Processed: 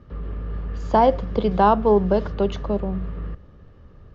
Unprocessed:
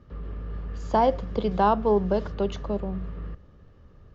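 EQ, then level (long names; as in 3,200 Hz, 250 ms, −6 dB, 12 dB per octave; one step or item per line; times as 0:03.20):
high-frequency loss of the air 71 metres
+5.0 dB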